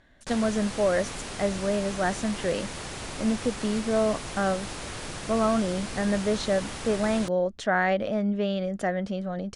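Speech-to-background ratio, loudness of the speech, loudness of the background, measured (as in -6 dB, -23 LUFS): 8.5 dB, -27.5 LUFS, -36.0 LUFS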